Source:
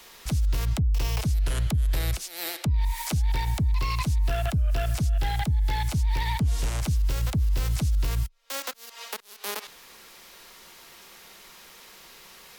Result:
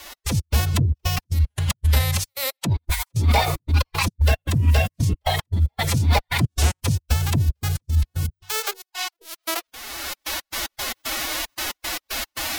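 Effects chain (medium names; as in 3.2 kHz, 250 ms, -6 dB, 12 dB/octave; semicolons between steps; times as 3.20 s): recorder AGC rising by 25 dB/s; hum notches 60/120/180/240/300/360/420/480/540/600 Hz; trance gate "x.x.xxx.x." 114 bpm -60 dB; formant-preserving pitch shift +8 st; trim +8.5 dB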